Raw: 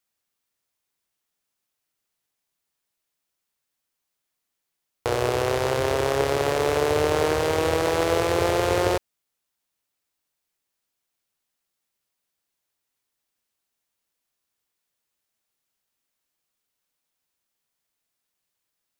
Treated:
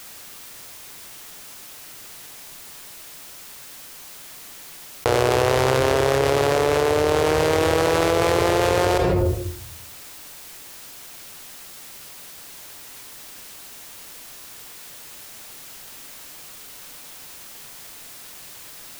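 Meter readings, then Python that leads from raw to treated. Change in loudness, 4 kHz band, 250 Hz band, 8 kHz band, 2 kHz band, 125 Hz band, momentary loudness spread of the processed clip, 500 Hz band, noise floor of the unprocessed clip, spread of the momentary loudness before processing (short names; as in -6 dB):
+3.5 dB, +4.5 dB, +4.5 dB, +5.5 dB, +4.0 dB, +5.5 dB, 19 LU, +3.5 dB, -81 dBFS, 3 LU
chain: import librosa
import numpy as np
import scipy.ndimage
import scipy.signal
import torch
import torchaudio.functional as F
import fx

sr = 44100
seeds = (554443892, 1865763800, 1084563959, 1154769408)

y = fx.room_shoebox(x, sr, seeds[0], volume_m3=840.0, walls='furnished', distance_m=0.36)
y = fx.env_flatten(y, sr, amount_pct=100)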